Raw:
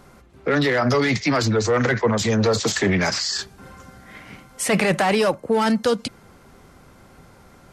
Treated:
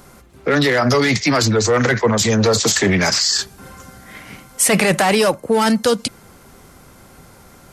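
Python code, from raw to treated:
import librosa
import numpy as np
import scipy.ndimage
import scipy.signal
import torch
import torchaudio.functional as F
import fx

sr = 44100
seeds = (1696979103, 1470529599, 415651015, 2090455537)

y = fx.high_shelf(x, sr, hz=6600.0, db=11.5)
y = F.gain(torch.from_numpy(y), 3.5).numpy()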